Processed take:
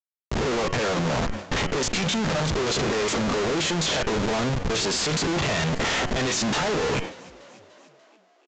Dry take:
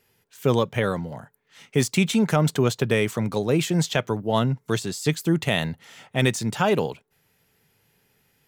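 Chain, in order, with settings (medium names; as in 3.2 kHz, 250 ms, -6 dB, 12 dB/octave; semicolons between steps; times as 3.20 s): spectrogram pixelated in time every 50 ms; peaking EQ 90 Hz -14 dB 1.9 oct; band-stop 1.5 kHz, Q 17; reverse; compression 16:1, threshold -32 dBFS, peak gain reduction 15 dB; reverse; waveshaping leveller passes 5; Schmitt trigger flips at -34.5 dBFS; de-hum 92.02 Hz, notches 35; on a send: frequency-shifting echo 293 ms, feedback 64%, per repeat +46 Hz, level -21.5 dB; on the sum: resampled via 16 kHz; decay stretcher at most 120 dB/s; trim +2.5 dB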